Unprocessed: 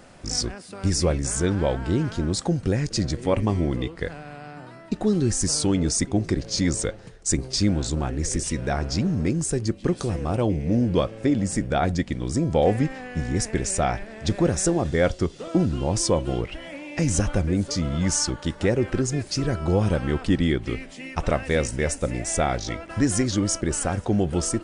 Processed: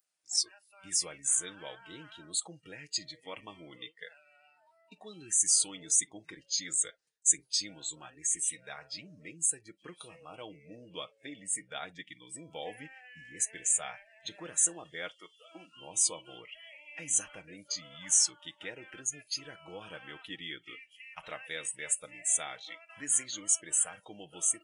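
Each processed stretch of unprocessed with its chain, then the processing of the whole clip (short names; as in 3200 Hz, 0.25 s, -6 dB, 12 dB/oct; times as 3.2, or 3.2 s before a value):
15.08–15.76 HPF 520 Hz 6 dB/oct + high shelf 7900 Hz +3 dB
whole clip: spectral noise reduction 25 dB; differentiator; comb 6.4 ms, depth 49%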